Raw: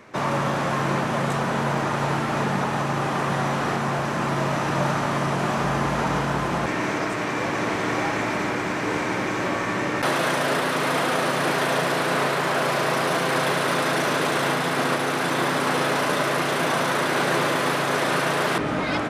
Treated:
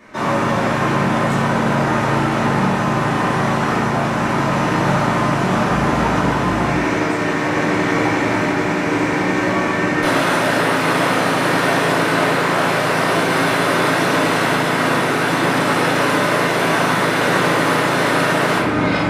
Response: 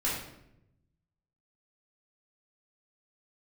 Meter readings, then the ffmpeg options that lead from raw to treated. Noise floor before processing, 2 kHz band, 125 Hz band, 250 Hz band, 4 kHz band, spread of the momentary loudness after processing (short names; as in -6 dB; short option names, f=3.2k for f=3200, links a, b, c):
-26 dBFS, +6.5 dB, +7.0 dB, +8.5 dB, +4.5 dB, 2 LU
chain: -filter_complex "[1:a]atrim=start_sample=2205[a];[0:a][a]afir=irnorm=-1:irlink=0,volume=-1.5dB"